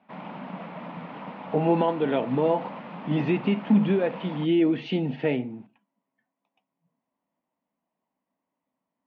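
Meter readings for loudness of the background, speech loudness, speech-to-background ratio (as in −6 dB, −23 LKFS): −39.0 LKFS, −25.0 LKFS, 14.0 dB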